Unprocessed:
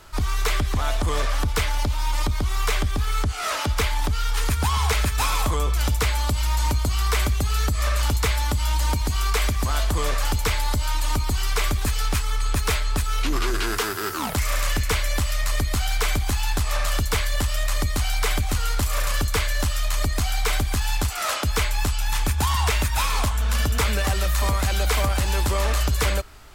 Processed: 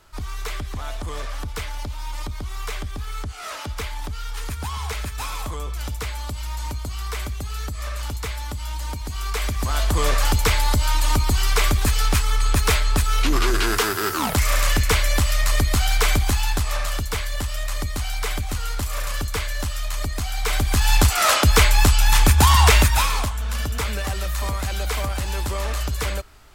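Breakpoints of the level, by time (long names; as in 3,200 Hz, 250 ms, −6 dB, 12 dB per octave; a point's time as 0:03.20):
0:09.02 −7 dB
0:10.07 +4 dB
0:16.22 +4 dB
0:17.04 −3 dB
0:20.32 −3 dB
0:20.97 +8 dB
0:22.79 +8 dB
0:23.35 −3.5 dB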